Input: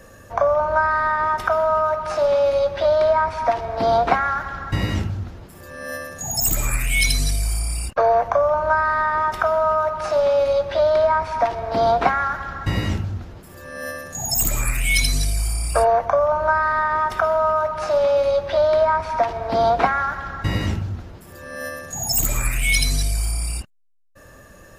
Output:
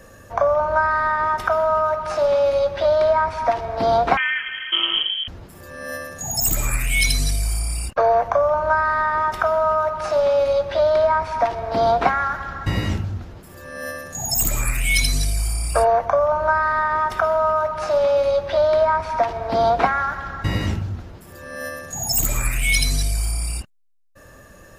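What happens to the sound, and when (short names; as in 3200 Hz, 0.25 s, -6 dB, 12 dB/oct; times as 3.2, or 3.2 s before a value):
4.17–5.28 inverted band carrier 3200 Hz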